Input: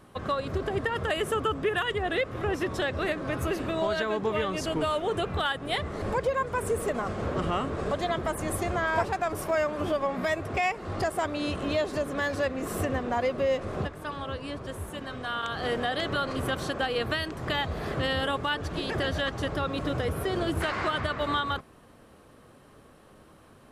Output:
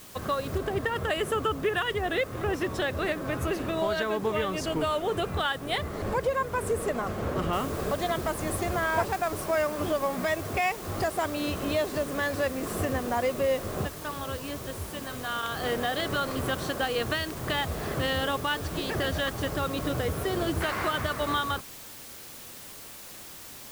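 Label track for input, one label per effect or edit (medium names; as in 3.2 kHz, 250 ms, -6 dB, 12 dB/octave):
0.580000	0.580000	noise floor step -50 dB -59 dB
7.530000	7.530000	noise floor step -55 dB -45 dB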